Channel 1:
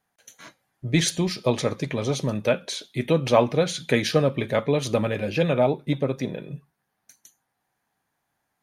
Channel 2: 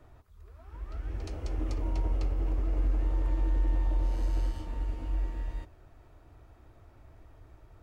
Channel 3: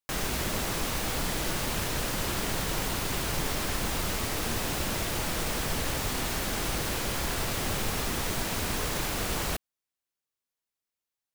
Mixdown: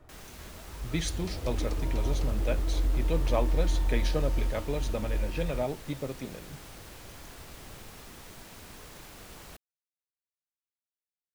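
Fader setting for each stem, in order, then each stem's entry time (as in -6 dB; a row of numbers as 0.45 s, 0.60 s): -11.0 dB, +0.5 dB, -17.0 dB; 0.00 s, 0.00 s, 0.00 s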